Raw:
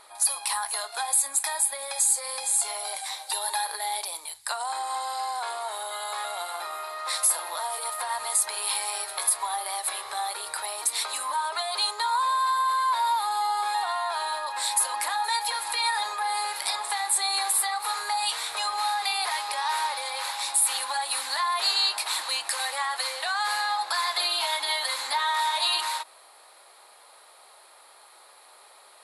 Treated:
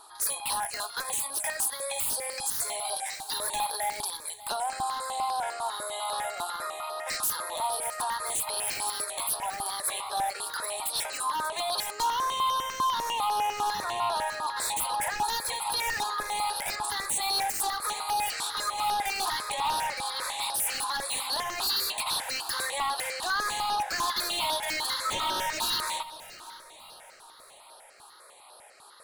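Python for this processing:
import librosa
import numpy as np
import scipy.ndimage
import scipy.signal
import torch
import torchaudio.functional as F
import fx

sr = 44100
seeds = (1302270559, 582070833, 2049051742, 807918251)

p1 = fx.peak_eq(x, sr, hz=590.0, db=3.0, octaves=0.66)
p2 = np.clip(p1, -10.0 ** (-25.5 / 20.0), 10.0 ** (-25.5 / 20.0))
p3 = p1 + F.gain(torch.from_numpy(p2), -10.0).numpy()
p4 = fx.dmg_tone(p3, sr, hz=1300.0, level_db=-24.0, at=(25.04, 25.45), fade=0.02)
p5 = 10.0 ** (-21.5 / 20.0) * (np.abs((p4 / 10.0 ** (-21.5 / 20.0) + 3.0) % 4.0 - 2.0) - 1.0)
p6 = p5 + fx.echo_feedback(p5, sr, ms=590, feedback_pct=48, wet_db=-16.5, dry=0)
y = fx.phaser_held(p6, sr, hz=10.0, low_hz=560.0, high_hz=7300.0)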